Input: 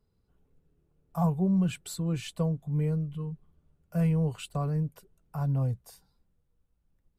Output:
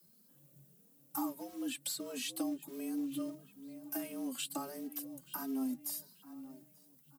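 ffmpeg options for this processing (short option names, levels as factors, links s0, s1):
-filter_complex "[0:a]highshelf=f=3200:g=11.5,acrossover=split=4200[s0][s1];[s1]acompressor=threshold=0.00355:ratio=4:attack=1:release=60[s2];[s0][s2]amix=inputs=2:normalize=0,aemphasis=mode=production:type=75fm,acrossover=split=300|780|1700[s3][s4][s5][s6];[s4]acrusher=samples=8:mix=1:aa=0.000001[s7];[s3][s7][s5][s6]amix=inputs=4:normalize=0,afreqshift=130,asplit=2[s8][s9];[s9]adelay=882,lowpass=f=4900:p=1,volume=0.0708,asplit=2[s10][s11];[s11]adelay=882,lowpass=f=4900:p=1,volume=0.38,asplit=2[s12][s13];[s13]adelay=882,lowpass=f=4900:p=1,volume=0.38[s14];[s8][s10][s12][s14]amix=inputs=4:normalize=0,acrusher=bits=6:mode=log:mix=0:aa=0.000001,acompressor=threshold=0.0178:ratio=6,asplit=2[s15][s16];[s16]adelay=2.8,afreqshift=1.5[s17];[s15][s17]amix=inputs=2:normalize=1,volume=1.33"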